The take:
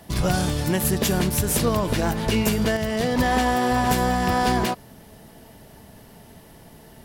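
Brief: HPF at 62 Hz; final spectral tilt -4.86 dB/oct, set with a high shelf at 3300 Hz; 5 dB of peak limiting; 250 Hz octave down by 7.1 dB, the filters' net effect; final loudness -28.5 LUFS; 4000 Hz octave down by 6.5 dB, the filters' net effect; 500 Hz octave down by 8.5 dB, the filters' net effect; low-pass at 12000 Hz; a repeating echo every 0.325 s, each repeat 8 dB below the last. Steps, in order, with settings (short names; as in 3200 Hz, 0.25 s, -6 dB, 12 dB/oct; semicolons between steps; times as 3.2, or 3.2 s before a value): HPF 62 Hz; LPF 12000 Hz; bell 250 Hz -7.5 dB; bell 500 Hz -8.5 dB; high shelf 3300 Hz -5 dB; bell 4000 Hz -5 dB; limiter -18 dBFS; feedback echo 0.325 s, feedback 40%, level -8 dB; gain -0.5 dB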